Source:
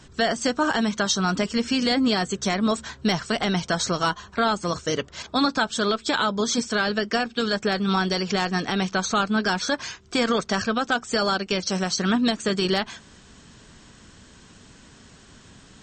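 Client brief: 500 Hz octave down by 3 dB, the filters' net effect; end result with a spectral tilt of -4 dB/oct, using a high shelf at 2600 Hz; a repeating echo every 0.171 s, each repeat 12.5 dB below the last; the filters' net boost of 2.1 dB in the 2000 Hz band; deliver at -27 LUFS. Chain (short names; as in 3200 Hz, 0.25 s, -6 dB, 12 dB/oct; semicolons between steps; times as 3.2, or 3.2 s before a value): bell 500 Hz -4 dB; bell 2000 Hz +5 dB; high shelf 2600 Hz -4.5 dB; feedback echo 0.171 s, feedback 24%, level -12.5 dB; gain -2.5 dB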